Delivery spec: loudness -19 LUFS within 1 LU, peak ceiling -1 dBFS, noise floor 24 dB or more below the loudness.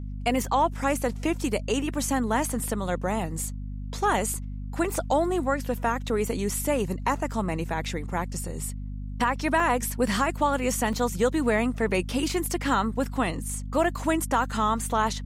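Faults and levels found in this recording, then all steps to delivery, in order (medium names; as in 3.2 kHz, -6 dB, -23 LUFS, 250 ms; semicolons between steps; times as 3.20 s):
dropouts 3; longest dropout 2.1 ms; hum 50 Hz; highest harmonic 250 Hz; hum level -32 dBFS; loudness -26.5 LUFS; peak level -11.0 dBFS; loudness target -19.0 LUFS
-> interpolate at 4.34/9.60/10.93 s, 2.1 ms; hum notches 50/100/150/200/250 Hz; trim +7.5 dB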